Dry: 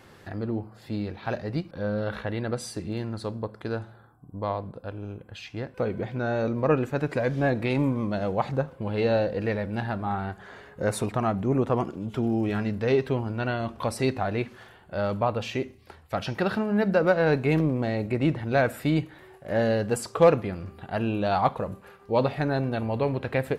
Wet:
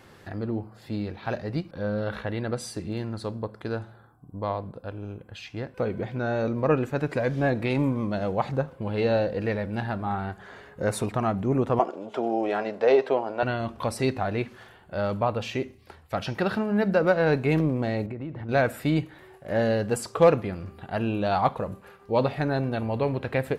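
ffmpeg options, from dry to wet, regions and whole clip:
-filter_complex "[0:a]asettb=1/sr,asplit=3[a][b][c];[a]atrim=end=11.794[d];[b]atrim=start=11.79:end=13.43,asetpts=PTS-STARTPTS,afade=t=in:d=0.004:c=qsin,afade=t=out:st=1.636:d=0.004:c=qsin,highpass=390,lowpass=7.7k,equalizer=f=650:w=1.1:g=12[e];[c]atrim=start=13.426[f];[d][e]acrossfade=d=0.004:c1=hsin:c2=qsin[g];[g][f]acrossfade=d=0.004:c1=qsin:c2=hsin,asettb=1/sr,asplit=3[h][i][j];[h]atrim=end=18.064[k];[i]atrim=start=18.06:end=18.49,asetpts=PTS-STARTPTS,afade=t=in:d=0.004:c=qsin,afade=t=out:st=0.426:d=0.004:c=qsin,lowpass=f=1.4k:p=1,acompressor=threshold=-31dB:ratio=6:attack=3.2:release=140:knee=1:detection=peak[l];[j]atrim=start=18.486[m];[k][l]acrossfade=d=0.004:c1=hsin:c2=qsin[n];[n][m]acrossfade=d=0.004:c1=qsin:c2=hsin"

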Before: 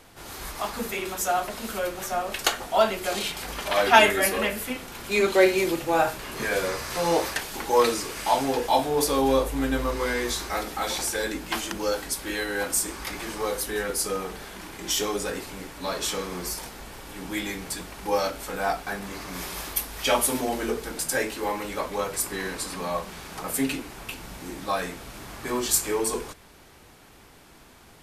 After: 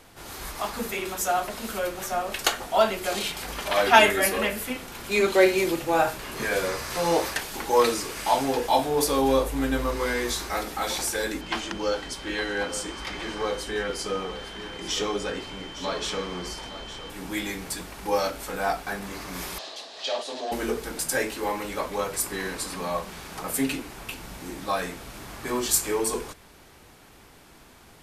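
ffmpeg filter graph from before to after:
-filter_complex "[0:a]asettb=1/sr,asplit=3[a][b][c];[a]atrim=end=11.414[d];[b]atrim=start=11.41:end=17.1,asetpts=PTS-STARTPTS,afade=t=in:d=0.004:c=qsin,afade=t=out:st=5.686:d=0.004:c=qsin,aeval=exprs='val(0)+0.00708*sin(2*PI*3100*n/s)':c=same,lowpass=5.4k,aecho=1:1:861:0.224,atrim=end_sample=250929[e];[c]atrim=start=17.096[f];[d][e]acrossfade=d=0.004:c1=hsin:c2=qsin[g];[g][f]acrossfade=d=0.004:c1=qsin:c2=hsin,asettb=1/sr,asplit=3[h][i][j];[h]atrim=end=19.584[k];[i]atrim=start=19.58:end=20.52,asetpts=PTS-STARTPTS,afade=t=in:d=0.004:c=qsin,afade=t=out:st=0.936:d=0.004:c=qsin,asoftclip=type=hard:threshold=-25.5dB,highpass=500,equalizer=f=640:t=q:w=4:g=7,equalizer=f=930:t=q:w=4:g=-6,equalizer=f=1.4k:t=q:w=4:g=-10,equalizer=f=2.2k:t=q:w=4:g=-9,equalizer=f=4k:t=q:w=4:g=7,equalizer=f=5.8k:t=q:w=4:g=-3,lowpass=f=6k:w=0.5412,lowpass=f=6k:w=1.3066[l];[j]atrim=start=20.516[m];[k][l]acrossfade=d=0.004:c1=hsin:c2=qsin[n];[n][m]acrossfade=d=0.004:c1=qsin:c2=hsin"

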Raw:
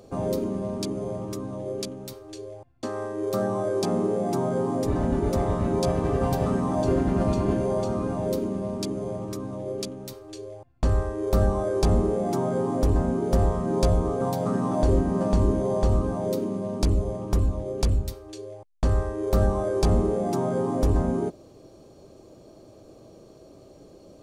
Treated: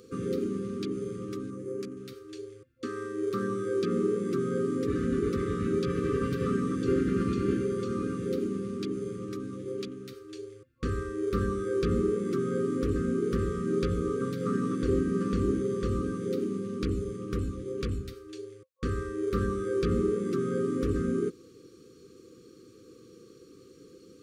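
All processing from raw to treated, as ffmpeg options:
-filter_complex "[0:a]asettb=1/sr,asplit=3[a][b][c];[a]atrim=end=1.504[d];[b]atrim=start=1.5:end=1.97,asetpts=PTS-STARTPTS,afade=t=in:d=0.004:c=qsin,afade=t=out:st=0.466:d=0.004:c=qsin,highpass=95,equalizer=f=3.5k:w=1.5:g=-12.5[e];[c]atrim=start=1.966[f];[d][e]acrossfade=d=0.004:c1=hsin:c2=qsin[g];[g][f]acrossfade=d=0.004:c1=qsin:c2=hsin,highpass=f=220:p=1,afftfilt=real='re*(1-between(b*sr/4096,520,1100))':imag='im*(1-between(b*sr/4096,520,1100))':win_size=4096:overlap=0.75,acrossover=split=3600[h][i];[i]acompressor=threshold=-53dB:ratio=4:attack=1:release=60[j];[h][j]amix=inputs=2:normalize=0"

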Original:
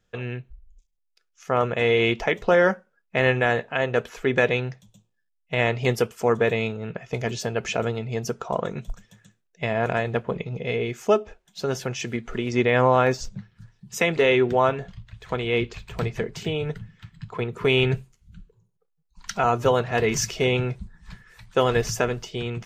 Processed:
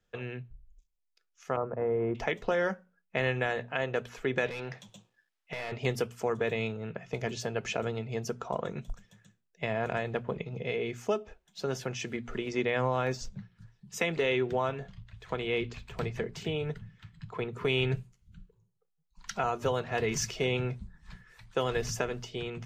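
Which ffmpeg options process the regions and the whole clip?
-filter_complex "[0:a]asettb=1/sr,asplit=3[a][b][c];[a]atrim=end=1.564[d];[b]atrim=start=1.56:end=2.15,asetpts=PTS-STARTPTS,afade=t=in:d=0.004:c=qsin,afade=t=out:st=0.586:d=0.004:c=qsin,lowpass=f=1.2k:w=0.5412,lowpass=f=1.2k:w=1.3066,agate=range=-33dB:threshold=-26dB:ratio=3:release=100:detection=peak[e];[c]atrim=start=2.146[f];[d][e]acrossfade=d=0.004:c1=hsin:c2=qsin[g];[g][f]acrossfade=d=0.004:c1=qsin:c2=hsin,asettb=1/sr,asplit=3[h][i][j];[h]atrim=end=4.464[k];[i]atrim=start=4.46:end=5.72,asetpts=PTS-STARTPTS,afade=t=in:d=0.004:c=qsin,afade=t=out:st=1.256:d=0.004:c=qsin,asplit=2[l][m];[m]highpass=f=720:p=1,volume=24dB,asoftclip=type=tanh:threshold=-8.5dB[n];[l][n]amix=inputs=2:normalize=0,lowpass=f=3.2k:p=1,volume=-6dB,acompressor=threshold=-29dB:ratio=10:attack=3.2:release=140:knee=1:detection=peak[o];[j]atrim=start=5.716[p];[k][o]acrossfade=d=0.004:c1=hsin:c2=qsin[q];[q][p]acrossfade=d=0.004:c1=qsin:c2=hsin,highshelf=f=8.5k:g=-4.5,bandreject=f=60:t=h:w=6,bandreject=f=120:t=h:w=6,bandreject=f=180:t=h:w=6,bandreject=f=240:t=h:w=6,acrossover=split=140|3000[r][s][t];[s]acompressor=threshold=-22dB:ratio=2.5[u];[r][u][t]amix=inputs=3:normalize=0,volume=-5.5dB"

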